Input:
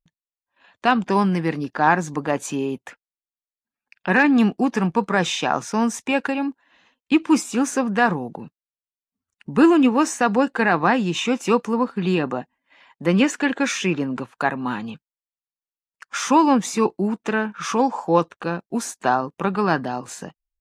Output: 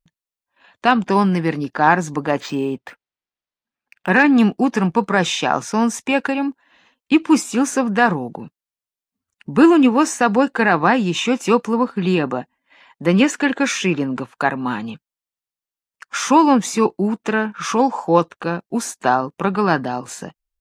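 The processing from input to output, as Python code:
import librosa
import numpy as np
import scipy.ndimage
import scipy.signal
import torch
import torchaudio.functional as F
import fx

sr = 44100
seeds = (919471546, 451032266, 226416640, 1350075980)

y = fx.resample_linear(x, sr, factor=4, at=(2.4, 4.09))
y = y * librosa.db_to_amplitude(3.0)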